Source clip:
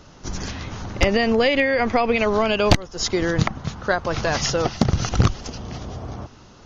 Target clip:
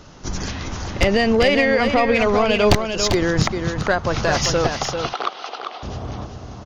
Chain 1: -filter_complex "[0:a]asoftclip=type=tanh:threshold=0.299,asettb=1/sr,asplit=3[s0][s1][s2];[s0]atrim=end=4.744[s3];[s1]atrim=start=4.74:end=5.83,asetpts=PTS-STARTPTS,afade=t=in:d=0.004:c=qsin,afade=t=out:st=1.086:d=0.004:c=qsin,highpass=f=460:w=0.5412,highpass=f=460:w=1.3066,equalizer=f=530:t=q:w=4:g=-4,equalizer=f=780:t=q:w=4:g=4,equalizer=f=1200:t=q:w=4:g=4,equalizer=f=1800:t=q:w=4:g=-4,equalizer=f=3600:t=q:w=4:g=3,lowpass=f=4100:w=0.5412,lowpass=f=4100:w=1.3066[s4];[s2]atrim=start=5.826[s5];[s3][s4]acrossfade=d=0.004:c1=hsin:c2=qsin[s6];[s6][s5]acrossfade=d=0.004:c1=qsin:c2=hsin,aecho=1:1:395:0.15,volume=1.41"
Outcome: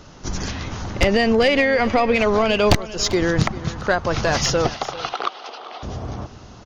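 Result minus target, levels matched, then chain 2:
echo-to-direct -10 dB
-filter_complex "[0:a]asoftclip=type=tanh:threshold=0.299,asettb=1/sr,asplit=3[s0][s1][s2];[s0]atrim=end=4.744[s3];[s1]atrim=start=4.74:end=5.83,asetpts=PTS-STARTPTS,afade=t=in:d=0.004:c=qsin,afade=t=out:st=1.086:d=0.004:c=qsin,highpass=f=460:w=0.5412,highpass=f=460:w=1.3066,equalizer=f=530:t=q:w=4:g=-4,equalizer=f=780:t=q:w=4:g=4,equalizer=f=1200:t=q:w=4:g=4,equalizer=f=1800:t=q:w=4:g=-4,equalizer=f=3600:t=q:w=4:g=3,lowpass=f=4100:w=0.5412,lowpass=f=4100:w=1.3066[s4];[s2]atrim=start=5.826[s5];[s3][s4]acrossfade=d=0.004:c1=hsin:c2=qsin[s6];[s6][s5]acrossfade=d=0.004:c1=qsin:c2=hsin,aecho=1:1:395:0.473,volume=1.41"

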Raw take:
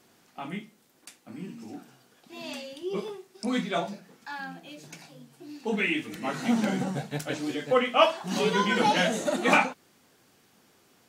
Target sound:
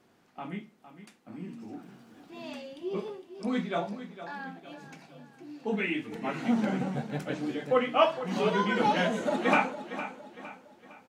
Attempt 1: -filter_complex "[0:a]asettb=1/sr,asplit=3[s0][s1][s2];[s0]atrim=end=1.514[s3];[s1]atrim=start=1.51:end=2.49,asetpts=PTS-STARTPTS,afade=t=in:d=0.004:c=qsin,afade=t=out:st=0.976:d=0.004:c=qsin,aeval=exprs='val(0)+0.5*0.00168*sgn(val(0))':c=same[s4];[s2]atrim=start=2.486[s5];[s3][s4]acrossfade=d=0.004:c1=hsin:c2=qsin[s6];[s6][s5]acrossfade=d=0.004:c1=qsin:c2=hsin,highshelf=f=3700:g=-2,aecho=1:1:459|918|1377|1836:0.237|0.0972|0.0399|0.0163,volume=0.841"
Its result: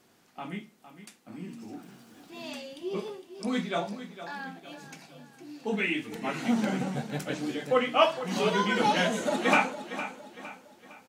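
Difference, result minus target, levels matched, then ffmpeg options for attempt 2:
8 kHz band +7.5 dB
-filter_complex "[0:a]asettb=1/sr,asplit=3[s0][s1][s2];[s0]atrim=end=1.514[s3];[s1]atrim=start=1.51:end=2.49,asetpts=PTS-STARTPTS,afade=t=in:d=0.004:c=qsin,afade=t=out:st=0.976:d=0.004:c=qsin,aeval=exprs='val(0)+0.5*0.00168*sgn(val(0))':c=same[s4];[s2]atrim=start=2.486[s5];[s3][s4]acrossfade=d=0.004:c1=hsin:c2=qsin[s6];[s6][s5]acrossfade=d=0.004:c1=qsin:c2=hsin,highshelf=f=3700:g=-13,aecho=1:1:459|918|1377|1836:0.237|0.0972|0.0399|0.0163,volume=0.841"

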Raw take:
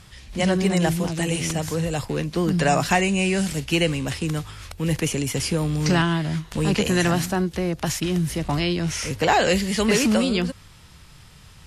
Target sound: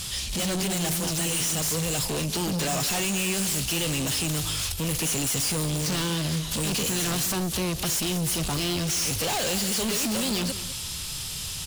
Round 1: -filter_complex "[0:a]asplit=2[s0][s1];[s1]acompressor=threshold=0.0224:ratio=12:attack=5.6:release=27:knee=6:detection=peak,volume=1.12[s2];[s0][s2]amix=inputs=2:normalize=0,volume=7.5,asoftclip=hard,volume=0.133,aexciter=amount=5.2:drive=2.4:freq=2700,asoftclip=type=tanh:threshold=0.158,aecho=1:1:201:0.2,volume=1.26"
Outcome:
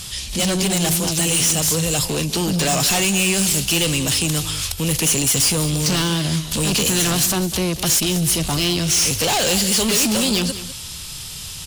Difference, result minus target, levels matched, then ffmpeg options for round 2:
saturation: distortion -5 dB
-filter_complex "[0:a]asplit=2[s0][s1];[s1]acompressor=threshold=0.0224:ratio=12:attack=5.6:release=27:knee=6:detection=peak,volume=1.12[s2];[s0][s2]amix=inputs=2:normalize=0,volume=7.5,asoftclip=hard,volume=0.133,aexciter=amount=5.2:drive=2.4:freq=2700,asoftclip=type=tanh:threshold=0.0422,aecho=1:1:201:0.2,volume=1.26"

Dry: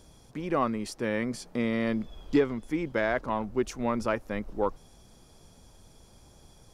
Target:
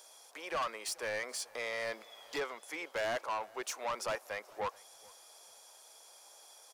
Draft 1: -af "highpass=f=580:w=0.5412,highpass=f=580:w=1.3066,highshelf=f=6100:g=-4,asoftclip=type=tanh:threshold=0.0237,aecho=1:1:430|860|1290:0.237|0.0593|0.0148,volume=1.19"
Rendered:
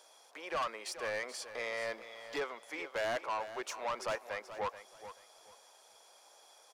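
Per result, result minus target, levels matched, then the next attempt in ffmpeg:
echo-to-direct +12 dB; 8 kHz band -4.5 dB
-af "highpass=f=580:w=0.5412,highpass=f=580:w=1.3066,highshelf=f=6100:g=-4,asoftclip=type=tanh:threshold=0.0237,aecho=1:1:430|860:0.0596|0.0149,volume=1.19"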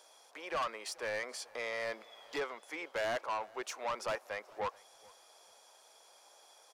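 8 kHz band -4.5 dB
-af "highpass=f=580:w=0.5412,highpass=f=580:w=1.3066,highshelf=f=6100:g=7,asoftclip=type=tanh:threshold=0.0237,aecho=1:1:430|860:0.0596|0.0149,volume=1.19"

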